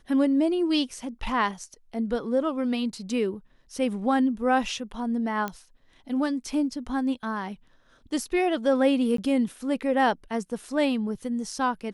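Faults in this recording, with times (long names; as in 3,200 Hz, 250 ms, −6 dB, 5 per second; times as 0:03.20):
0:05.48: click −17 dBFS
0:09.17–0:09.18: drop-out 13 ms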